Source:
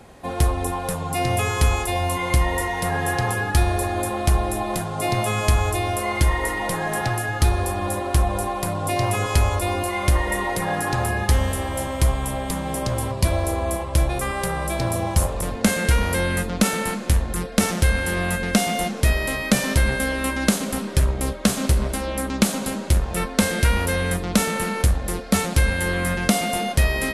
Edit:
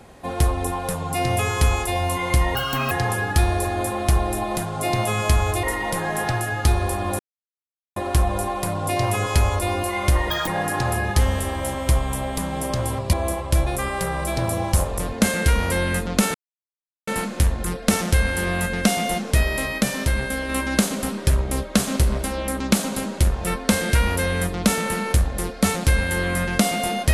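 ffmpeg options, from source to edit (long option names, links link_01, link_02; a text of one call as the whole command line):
ffmpeg -i in.wav -filter_complex "[0:a]asplit=11[link_01][link_02][link_03][link_04][link_05][link_06][link_07][link_08][link_09][link_10][link_11];[link_01]atrim=end=2.554[link_12];[link_02]atrim=start=2.55:end=3.1,asetpts=PTS-STARTPTS,asetrate=67032,aresample=44100,atrim=end_sample=15957,asetpts=PTS-STARTPTS[link_13];[link_03]atrim=start=3.096:end=5.822[link_14];[link_04]atrim=start=6.398:end=7.96,asetpts=PTS-STARTPTS,afade=type=out:start_time=1.558:duration=0.004:curve=hsin,apad=pad_dur=0.77[link_15];[link_05]atrim=start=7.96:end=10.304,asetpts=PTS-STARTPTS,afade=type=in:duration=0.004:curve=hsin[link_16];[link_06]atrim=start=10.3:end=10.6,asetpts=PTS-STARTPTS,asetrate=77175,aresample=44100[link_17];[link_07]atrim=start=10.596:end=13.262[link_18];[link_08]atrim=start=13.558:end=16.77,asetpts=PTS-STARTPTS,afade=type=out:start_time=3.208:duration=0.004:curve=hsin,apad=pad_dur=0.73[link_19];[link_09]atrim=start=16.77:end=19.482,asetpts=PTS-STARTPTS,afade=type=in:duration=0.004:curve=hsin[link_20];[link_10]atrim=start=19.478:end=20.192,asetpts=PTS-STARTPTS,volume=-3dB[link_21];[link_11]atrim=start=20.188[link_22];[link_12][link_13]acrossfade=duration=0.004:curve1=hsin:curve2=hsin[link_23];[link_23][link_14]acrossfade=duration=0.004:curve1=hsin:curve2=hsin[link_24];[link_15][link_16]concat=n=2:v=0:a=1[link_25];[link_24][link_25]acrossfade=duration=0.004:curve1=hsin:curve2=hsin[link_26];[link_26][link_17]acrossfade=duration=0.004:curve1=hsin:curve2=hsin[link_27];[link_27][link_18]acrossfade=duration=0.004:curve1=hsin:curve2=hsin[link_28];[link_19][link_20]concat=n=2:v=0:a=1[link_29];[link_28][link_29]acrossfade=duration=0.004:curve1=hsin:curve2=hsin[link_30];[link_30][link_21]acrossfade=duration=0.004:curve1=hsin:curve2=hsin[link_31];[link_31][link_22]acrossfade=duration=0.004:curve1=hsin:curve2=hsin" out.wav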